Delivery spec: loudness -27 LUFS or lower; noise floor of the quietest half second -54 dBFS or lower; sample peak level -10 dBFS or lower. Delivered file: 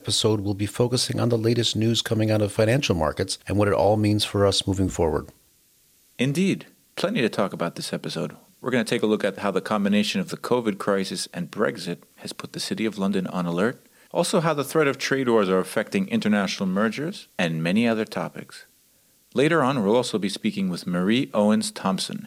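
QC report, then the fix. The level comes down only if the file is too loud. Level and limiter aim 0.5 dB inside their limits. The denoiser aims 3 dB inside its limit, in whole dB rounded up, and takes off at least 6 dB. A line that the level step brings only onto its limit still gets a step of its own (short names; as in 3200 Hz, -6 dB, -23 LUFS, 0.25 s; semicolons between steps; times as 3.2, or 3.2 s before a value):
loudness -23.5 LUFS: fail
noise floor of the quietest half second -60 dBFS: OK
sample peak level -8.0 dBFS: fail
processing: gain -4 dB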